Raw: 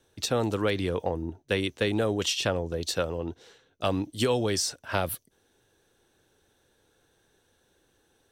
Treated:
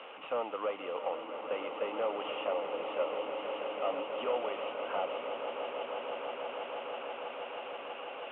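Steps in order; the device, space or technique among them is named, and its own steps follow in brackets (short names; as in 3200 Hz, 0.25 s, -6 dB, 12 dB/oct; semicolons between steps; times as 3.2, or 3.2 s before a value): digital answering machine (BPF 350–3400 Hz; delta modulation 16 kbps, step -36.5 dBFS; speaker cabinet 350–3200 Hz, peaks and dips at 370 Hz -8 dB, 550 Hz +5 dB, 800 Hz +5 dB, 1200 Hz +8 dB, 1700 Hz -10 dB, 2900 Hz +9 dB); swelling echo 0.162 s, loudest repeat 8, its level -12 dB; gain -6 dB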